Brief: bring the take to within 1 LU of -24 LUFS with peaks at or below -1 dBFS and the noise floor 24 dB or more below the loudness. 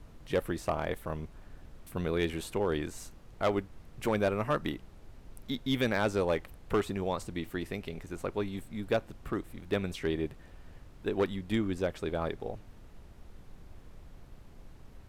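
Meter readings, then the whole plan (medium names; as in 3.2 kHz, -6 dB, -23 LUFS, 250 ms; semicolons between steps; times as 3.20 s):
clipped samples 0.3%; clipping level -20.5 dBFS; noise floor -53 dBFS; noise floor target -58 dBFS; loudness -33.5 LUFS; peak level -20.5 dBFS; loudness target -24.0 LUFS
-> clip repair -20.5 dBFS; noise print and reduce 6 dB; trim +9.5 dB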